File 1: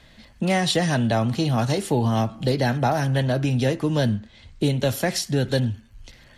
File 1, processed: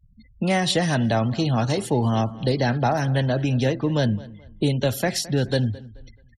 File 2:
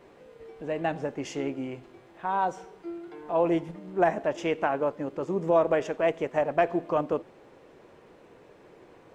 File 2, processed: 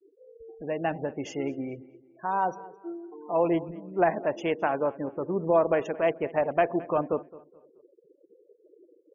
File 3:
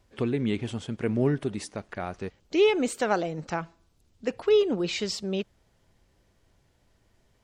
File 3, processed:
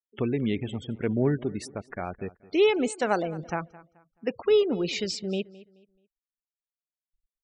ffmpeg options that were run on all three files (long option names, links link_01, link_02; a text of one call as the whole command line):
ffmpeg -i in.wav -filter_complex "[0:a]afftfilt=real='re*gte(hypot(re,im),0.0126)':imag='im*gte(hypot(re,im),0.0126)':win_size=1024:overlap=0.75,asplit=2[link_01][link_02];[link_02]adelay=215,lowpass=frequency=4100:poles=1,volume=-19.5dB,asplit=2[link_03][link_04];[link_04]adelay=215,lowpass=frequency=4100:poles=1,volume=0.31,asplit=2[link_05][link_06];[link_06]adelay=215,lowpass=frequency=4100:poles=1,volume=0.31[link_07];[link_01][link_03][link_05][link_07]amix=inputs=4:normalize=0" out.wav